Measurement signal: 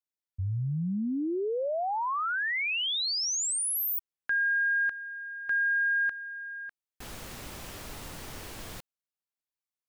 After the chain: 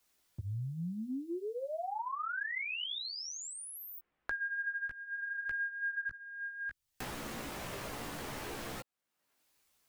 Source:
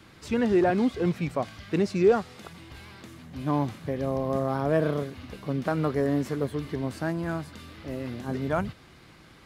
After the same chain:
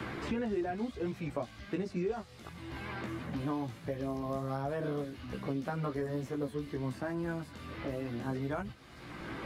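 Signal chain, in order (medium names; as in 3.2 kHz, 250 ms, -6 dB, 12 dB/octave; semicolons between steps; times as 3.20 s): chorus voices 4, 0.63 Hz, delay 16 ms, depth 2.1 ms; three bands compressed up and down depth 100%; trim -6.5 dB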